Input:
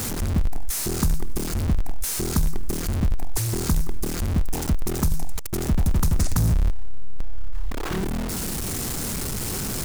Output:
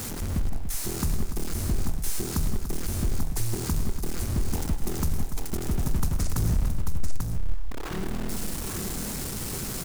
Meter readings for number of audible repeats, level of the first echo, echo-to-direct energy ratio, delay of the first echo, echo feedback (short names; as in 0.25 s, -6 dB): 4, -14.0 dB, -3.0 dB, 0.106 s, no steady repeat